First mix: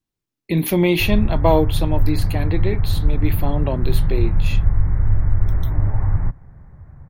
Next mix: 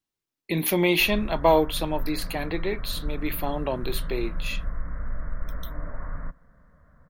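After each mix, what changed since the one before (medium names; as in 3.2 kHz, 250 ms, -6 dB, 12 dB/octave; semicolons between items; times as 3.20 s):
background: add static phaser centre 550 Hz, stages 8; master: add bass shelf 300 Hz -12 dB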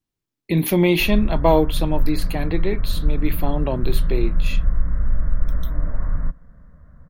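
master: add bass shelf 300 Hz +12 dB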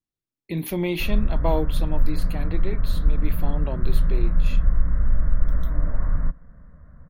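speech -8.5 dB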